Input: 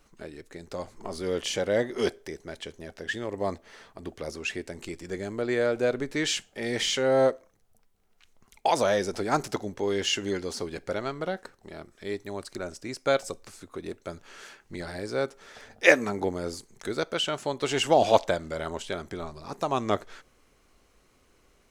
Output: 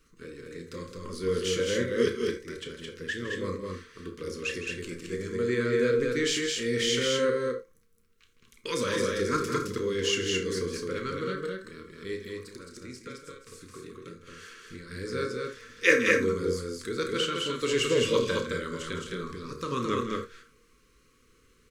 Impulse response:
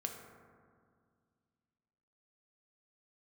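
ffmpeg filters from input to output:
-filter_complex "[0:a]asettb=1/sr,asplit=3[a][b][c];[a]atrim=end=12.184[d];[b]atrim=start=12.18:end=14.91,asetpts=PTS-STARTPTS,afade=t=in:d=0.004:c=qsin,afade=t=out:st=2.726:d=0.004:c=qsin,acompressor=threshold=-40dB:ratio=5[e];[c]atrim=start=14.906[f];[d][e]acrossfade=d=0.004:c1=hsin:c2=qsin[g];[g][f]acrossfade=d=0.004:c1=qsin:c2=hsin,asuperstop=centerf=740:order=8:qfactor=1.4,asplit=2[h][i];[i]adelay=32,volume=-11dB[j];[h][j]amix=inputs=2:normalize=0,aecho=1:1:160.3|215.7:0.282|0.708[k];[1:a]atrim=start_sample=2205,atrim=end_sample=3969[l];[k][l]afir=irnorm=-1:irlink=0"

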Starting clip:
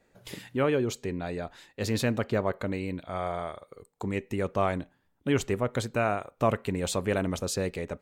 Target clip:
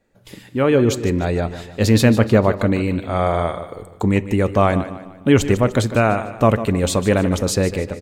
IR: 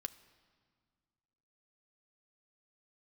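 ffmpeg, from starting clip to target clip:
-filter_complex "[0:a]dynaudnorm=f=430:g=3:m=15dB,aecho=1:1:150|300|450|600:0.224|0.094|0.0395|0.0166,asplit=2[a][b];[1:a]atrim=start_sample=2205,lowshelf=f=390:g=9[c];[b][c]afir=irnorm=-1:irlink=0,volume=0dB[d];[a][d]amix=inputs=2:normalize=0,volume=-6.5dB"

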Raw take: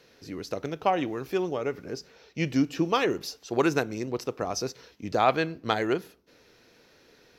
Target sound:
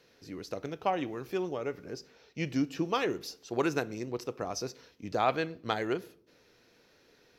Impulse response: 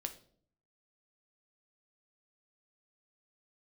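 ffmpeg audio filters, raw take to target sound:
-filter_complex "[0:a]asplit=2[a][b];[1:a]atrim=start_sample=2205,asetrate=39690,aresample=44100[c];[b][c]afir=irnorm=-1:irlink=0,volume=-8.5dB[d];[a][d]amix=inputs=2:normalize=0,volume=-7.5dB"

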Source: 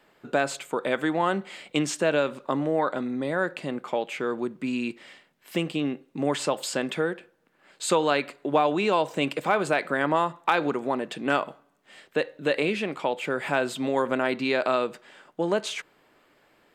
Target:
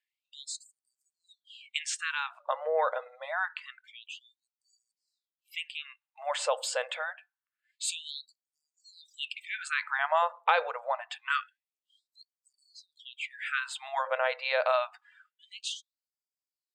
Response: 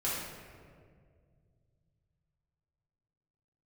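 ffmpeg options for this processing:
-af "afftdn=nr=22:nf=-45,afftfilt=real='re*gte(b*sr/1024,440*pow(4600/440,0.5+0.5*sin(2*PI*0.26*pts/sr)))':imag='im*gte(b*sr/1024,440*pow(4600/440,0.5+0.5*sin(2*PI*0.26*pts/sr)))':win_size=1024:overlap=0.75,volume=-1.5dB"

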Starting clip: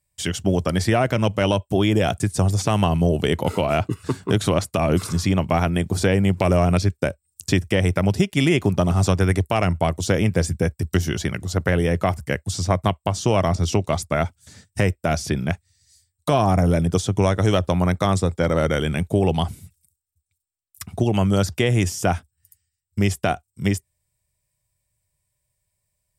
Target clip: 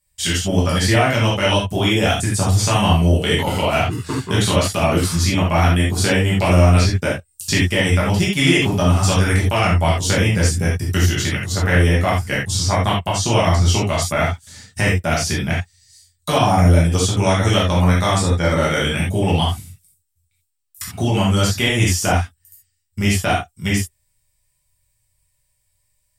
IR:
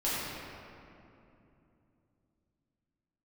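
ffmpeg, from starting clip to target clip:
-filter_complex "[0:a]equalizer=f=380:t=o:w=2.6:g=-10[a];[1:a]atrim=start_sample=2205,afade=t=out:st=0.14:d=0.01,atrim=end_sample=6615[b];[a][b]afir=irnorm=-1:irlink=0,volume=4dB"

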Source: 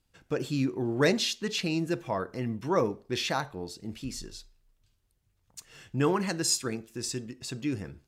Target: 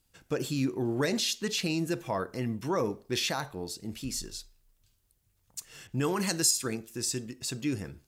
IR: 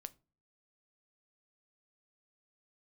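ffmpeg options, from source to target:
-filter_complex "[0:a]highshelf=f=6.7k:g=11.5,alimiter=limit=-20dB:level=0:latency=1:release=35,asettb=1/sr,asplit=3[a][b][c];[a]atrim=end=5.874[d];[b]atrim=start=5.87:end=6.51,asetpts=PTS-STARTPTS,afade=t=in:d=0.004:c=qsin,afade=t=out:st=0.636:d=0.004:c=qsin,adynamicequalizer=threshold=0.00562:dfrequency=3200:dqfactor=0.7:tfrequency=3200:tqfactor=0.7:attack=5:release=100:ratio=0.375:range=3:mode=boostabove:tftype=highshelf[e];[c]atrim=start=6.506[f];[d][e]acrossfade=d=0.004:c1=hsin:c2=qsin[g];[g][f]acrossfade=d=0.004:c1=qsin:c2=hsin"

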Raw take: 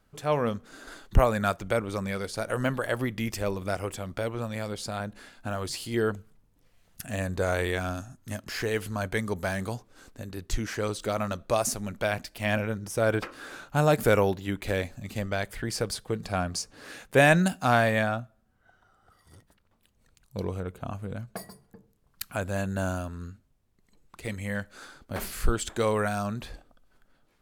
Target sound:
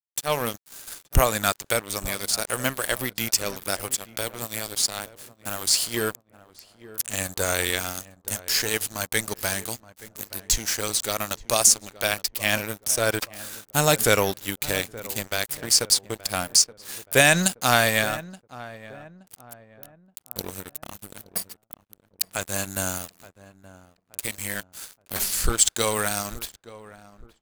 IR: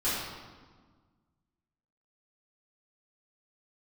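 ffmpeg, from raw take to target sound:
-filter_complex "[0:a]aemphasis=mode=production:type=50fm,acrossover=split=7200[a][b];[b]acompressor=threshold=-48dB:ratio=10[c];[a][c]amix=inputs=2:normalize=0,crystalizer=i=4.5:c=0,aeval=exprs='sgn(val(0))*max(abs(val(0))-0.0266,0)':c=same,asplit=2[d][e];[e]adelay=874,lowpass=f=1.2k:p=1,volume=-16.5dB,asplit=2[f][g];[g]adelay=874,lowpass=f=1.2k:p=1,volume=0.41,asplit=2[h][i];[i]adelay=874,lowpass=f=1.2k:p=1,volume=0.41,asplit=2[j][k];[k]adelay=874,lowpass=f=1.2k:p=1,volume=0.41[l];[f][h][j][l]amix=inputs=4:normalize=0[m];[d][m]amix=inputs=2:normalize=0,alimiter=level_in=4dB:limit=-1dB:release=50:level=0:latency=1,volume=-2dB"

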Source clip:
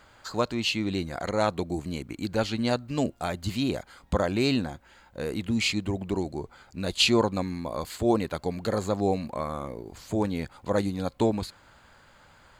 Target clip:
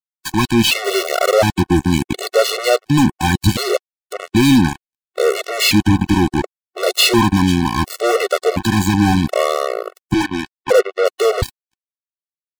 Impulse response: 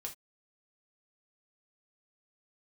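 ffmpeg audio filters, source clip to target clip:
-filter_complex "[0:a]asettb=1/sr,asplit=3[a][b][c];[a]atrim=end=10.144[d];[b]atrim=start=10.14:end=11.07,asetpts=PTS-STARTPTS,afade=t=in:d=0.004:c=qsin,afade=t=out:st=0.926:d=0.004:c=qsin,highpass=f=350:w=0.5412,highpass=f=350:w=1.3066,equalizer=f=450:t=q:w=4:g=7,equalizer=f=750:t=q:w=4:g=-4,equalizer=f=1.2k:t=q:w=4:g=-5,equalizer=f=1.8k:t=q:w=4:g=5,lowpass=f=2k:w=0.5412,lowpass=f=2k:w=1.3066[e];[c]atrim=start=11.066[f];[d][e]acrossfade=d=0.004:c1=hsin:c2=qsin[g];[g][f]acrossfade=d=0.004:c1=qsin:c2=hsin,aecho=1:1:475:0.0708,asplit=3[h][i][j];[h]afade=t=out:st=3.76:d=0.02[k];[i]acompressor=threshold=-45dB:ratio=2.5,afade=t=in:st=3.76:d=0.02,afade=t=out:st=4.34:d=0.02[l];[j]afade=t=in:st=4.34:d=0.02[m];[k][l][m]amix=inputs=3:normalize=0,acrusher=bits=4:mix=0:aa=0.5,asoftclip=type=tanh:threshold=-28.5dB,asettb=1/sr,asplit=3[n][o][p];[n]atrim=end=0.844[q];[o]atrim=start=0.84:end=1.34,asetpts=PTS-STARTPTS,afade=t=in:d=0.004:c=qsin,afade=t=out:st=0.496:d=0.004:c=qsin,acrusher=bits=2:mode=log:mix=0:aa=0.000001[r];[p]atrim=start=1.336[s];[q][r]acrossfade=d=0.004:c1=hsin:c2=qsin[t];[t][s]acrossfade=d=0.004:c1=qsin:c2=hsin,alimiter=level_in=31.5dB:limit=-1dB:release=50:level=0:latency=1,afftfilt=real='re*gt(sin(2*PI*0.7*pts/sr)*(1-2*mod(floor(b*sr/1024/370),2)),0)':imag='im*gt(sin(2*PI*0.7*pts/sr)*(1-2*mod(floor(b*sr/1024/370),2)),0)':win_size=1024:overlap=0.75,volume=-5.5dB"

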